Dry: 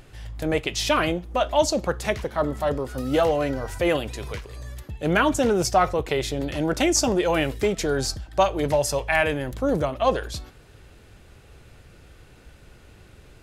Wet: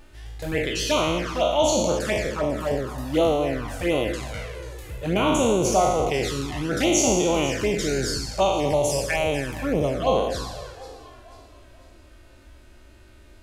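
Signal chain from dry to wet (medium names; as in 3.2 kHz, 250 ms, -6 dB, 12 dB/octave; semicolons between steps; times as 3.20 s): spectral sustain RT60 1.21 s; echo whose repeats swap between lows and highs 246 ms, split 1.1 kHz, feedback 65%, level -11.5 dB; touch-sensitive flanger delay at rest 3.6 ms, full sweep at -15 dBFS; trim -1.5 dB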